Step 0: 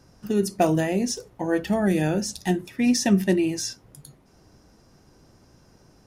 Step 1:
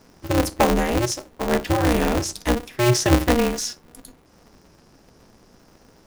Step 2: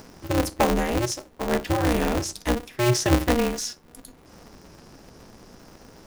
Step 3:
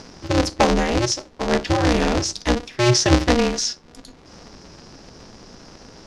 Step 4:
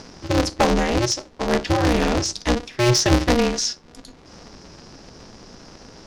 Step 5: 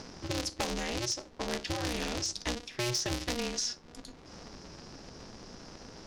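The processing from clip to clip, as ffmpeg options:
ffmpeg -i in.wav -af "aeval=exprs='val(0)*sgn(sin(2*PI*120*n/s))':channel_layout=same,volume=2.5dB" out.wav
ffmpeg -i in.wav -af "acompressor=mode=upward:threshold=-35dB:ratio=2.5,volume=-3dB" out.wav
ffmpeg -i in.wav -af "lowpass=frequency=5400:width_type=q:width=1.8,volume=4dB" out.wav
ffmpeg -i in.wav -af "aeval=exprs='clip(val(0),-1,0.2)':channel_layout=same" out.wav
ffmpeg -i in.wav -filter_complex "[0:a]acrossover=split=2400|6600[link_01][link_02][link_03];[link_01]acompressor=threshold=-30dB:ratio=4[link_04];[link_02]acompressor=threshold=-30dB:ratio=4[link_05];[link_03]acompressor=threshold=-33dB:ratio=4[link_06];[link_04][link_05][link_06]amix=inputs=3:normalize=0,volume=-5dB" out.wav

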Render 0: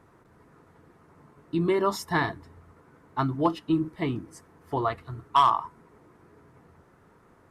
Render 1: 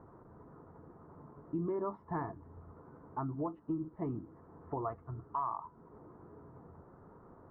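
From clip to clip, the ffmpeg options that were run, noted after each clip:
ffmpeg -i in.wav -af "lowpass=frequency=1200:width=0.5412,lowpass=frequency=1200:width=1.3066,alimiter=limit=-19.5dB:level=0:latency=1:release=367,acompressor=threshold=-54dB:ratio=1.5,volume=2.5dB" out.wav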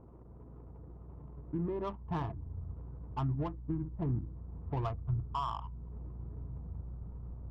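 ffmpeg -i in.wav -af "aeval=exprs='val(0)+0.00141*(sin(2*PI*60*n/s)+sin(2*PI*2*60*n/s)/2+sin(2*PI*3*60*n/s)/3+sin(2*PI*4*60*n/s)/4+sin(2*PI*5*60*n/s)/5)':channel_layout=same,adynamicsmooth=sensitivity=6:basefreq=660,asubboost=boost=6.5:cutoff=130,volume=1dB" out.wav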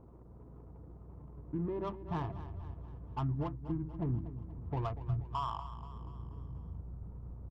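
ffmpeg -i in.wav -af "aecho=1:1:240|480|720|960|1200:0.224|0.119|0.0629|0.0333|0.0177,volume=-1dB" out.wav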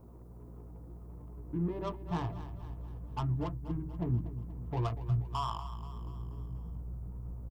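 ffmpeg -i in.wav -filter_complex "[0:a]acrossover=split=1000[link_01][link_02];[link_01]asplit=2[link_03][link_04];[link_04]adelay=17,volume=-2.5dB[link_05];[link_03][link_05]amix=inputs=2:normalize=0[link_06];[link_02]crystalizer=i=3:c=0[link_07];[link_06][link_07]amix=inputs=2:normalize=0" out.wav

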